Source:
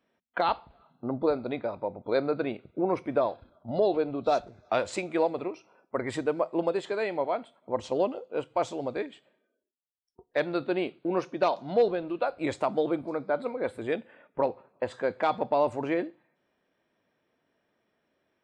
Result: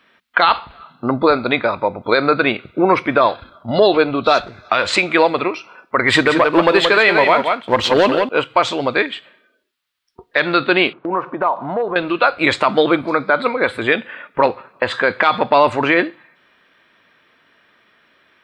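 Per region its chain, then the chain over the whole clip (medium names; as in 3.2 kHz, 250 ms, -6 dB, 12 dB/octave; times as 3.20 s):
6.08–8.29 s: waveshaping leveller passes 1 + delay 176 ms -7.5 dB
10.93–11.96 s: resonant low-pass 970 Hz, resonance Q 2.3 + compression 2.5:1, threshold -35 dBFS
whole clip: high-order bell 2.2 kHz +12 dB 2.4 oct; loudness maximiser +13.5 dB; trim -1 dB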